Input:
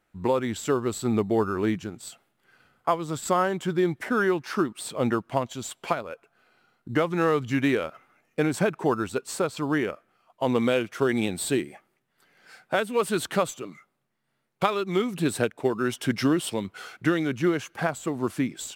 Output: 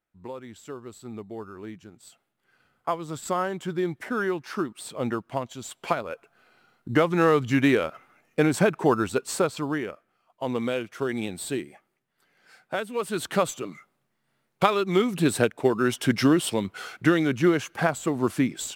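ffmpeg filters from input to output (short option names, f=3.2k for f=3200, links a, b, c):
-af "volume=10.5dB,afade=t=in:st=1.73:d=1.16:silence=0.298538,afade=t=in:st=5.64:d=0.48:silence=0.473151,afade=t=out:st=9.39:d=0.4:silence=0.421697,afade=t=in:st=13.08:d=0.49:silence=0.421697"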